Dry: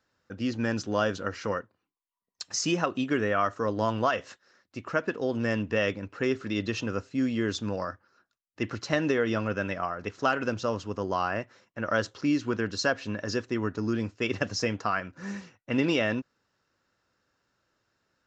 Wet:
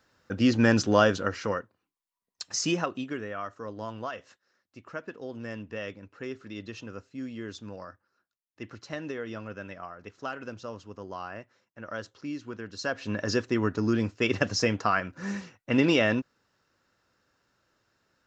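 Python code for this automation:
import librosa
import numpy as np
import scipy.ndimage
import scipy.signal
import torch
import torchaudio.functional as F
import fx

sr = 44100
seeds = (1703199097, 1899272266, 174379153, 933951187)

y = fx.gain(x, sr, db=fx.line((0.84, 7.5), (1.57, 0.0), (2.71, 0.0), (3.27, -10.0), (12.69, -10.0), (13.17, 3.0)))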